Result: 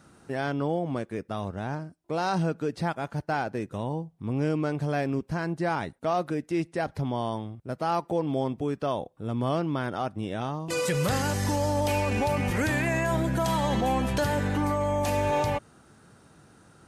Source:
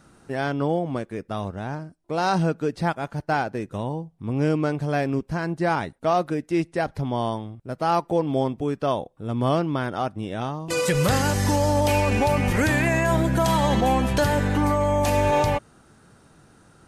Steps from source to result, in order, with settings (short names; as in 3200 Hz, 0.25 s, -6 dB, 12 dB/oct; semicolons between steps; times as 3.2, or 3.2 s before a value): HPF 53 Hz; in parallel at +2 dB: limiter -21.5 dBFS, peak gain reduction 11 dB; on the sum: gain -8.5 dB